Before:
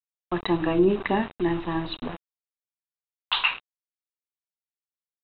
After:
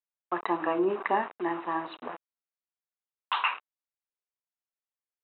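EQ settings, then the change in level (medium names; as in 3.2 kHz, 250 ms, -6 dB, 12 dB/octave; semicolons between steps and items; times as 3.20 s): dynamic bell 1.1 kHz, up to +5 dB, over -41 dBFS, Q 1.8; band-pass 490–2200 Hz; distance through air 150 m; 0.0 dB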